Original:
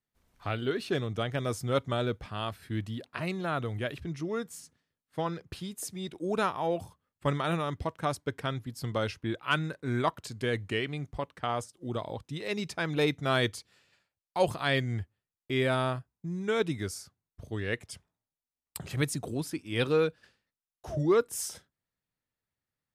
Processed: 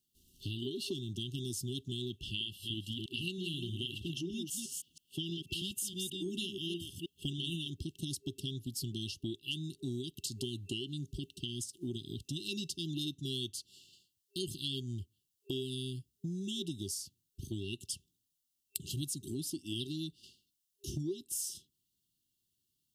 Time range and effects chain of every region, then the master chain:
0:02.10–0:07.68: delay that plays each chunk backwards 160 ms, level −6 dB + flat-topped bell 2,400 Hz +10.5 dB 1.1 octaves
whole clip: brick-wall band-stop 400–2,700 Hz; spectral tilt +1.5 dB per octave; downward compressor 6 to 1, threshold −43 dBFS; level +7 dB

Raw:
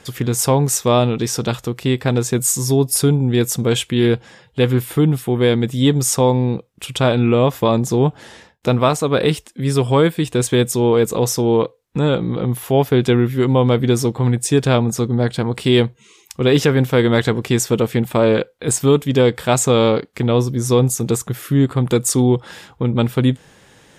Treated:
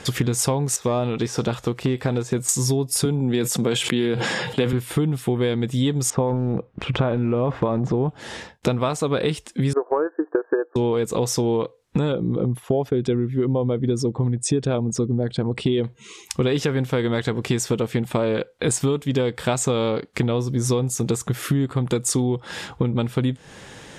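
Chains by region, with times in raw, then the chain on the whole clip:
0:00.76–0:02.49: de-essing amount 100% + low-shelf EQ 410 Hz −6 dB
0:03.05–0:04.73: high-pass filter 140 Hz 24 dB per octave + notch filter 6,000 Hz, Q 14 + level that may fall only so fast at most 61 dB per second
0:06.10–0:08.09: low-pass filter 1,600 Hz + transient designer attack +3 dB, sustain +11 dB
0:09.73–0:10.76: linear-phase brick-wall band-pass 290–1,800 Hz + transient designer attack +7 dB, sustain −5 dB
0:12.12–0:15.84: spectral envelope exaggerated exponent 1.5 + low-pass filter 9,200 Hz + downward expander −30 dBFS
whole clip: low-pass filter 10,000 Hz 12 dB per octave; downward compressor 10 to 1, threshold −25 dBFS; level +7 dB

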